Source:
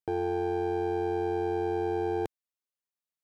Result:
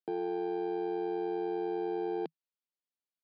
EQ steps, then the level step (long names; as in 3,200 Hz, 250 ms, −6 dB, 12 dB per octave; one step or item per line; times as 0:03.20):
Chebyshev band-pass filter 160–4,700 Hz, order 5
parametric band 1,400 Hz −6 dB 2.3 octaves
−1.5 dB